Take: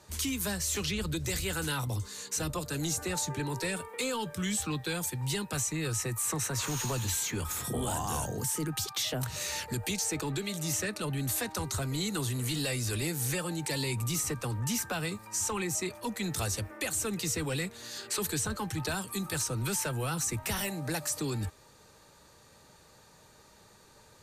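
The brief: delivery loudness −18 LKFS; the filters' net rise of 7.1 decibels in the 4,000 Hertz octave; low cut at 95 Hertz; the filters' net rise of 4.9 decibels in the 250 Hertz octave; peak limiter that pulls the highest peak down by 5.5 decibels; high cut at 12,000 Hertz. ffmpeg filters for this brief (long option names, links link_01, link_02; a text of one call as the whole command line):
ffmpeg -i in.wav -af "highpass=95,lowpass=12000,equalizer=frequency=250:width_type=o:gain=7,equalizer=frequency=4000:width_type=o:gain=8.5,volume=12dB,alimiter=limit=-9.5dB:level=0:latency=1" out.wav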